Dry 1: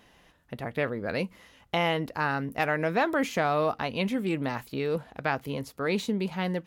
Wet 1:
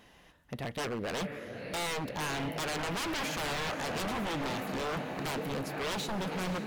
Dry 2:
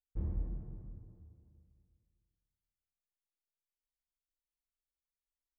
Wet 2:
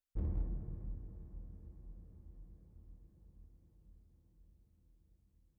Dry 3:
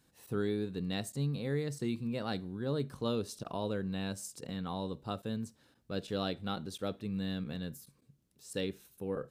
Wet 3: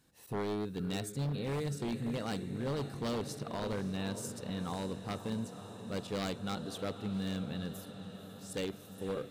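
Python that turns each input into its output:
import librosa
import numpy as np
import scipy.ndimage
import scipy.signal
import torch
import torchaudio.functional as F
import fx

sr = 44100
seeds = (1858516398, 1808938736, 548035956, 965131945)

y = fx.echo_diffused(x, sr, ms=526, feedback_pct=73, wet_db=-12.0)
y = 10.0 ** (-29.0 / 20.0) * (np.abs((y / 10.0 ** (-29.0 / 20.0) + 3.0) % 4.0 - 2.0) - 1.0)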